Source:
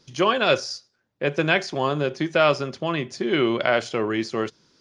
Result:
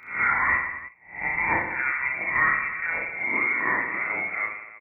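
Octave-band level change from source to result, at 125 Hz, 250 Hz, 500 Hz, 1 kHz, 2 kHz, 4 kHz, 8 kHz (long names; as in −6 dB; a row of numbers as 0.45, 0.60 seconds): −13.5 dB, −14.5 dB, −18.0 dB, −1.5 dB, +5.5 dB, below −40 dB, below −40 dB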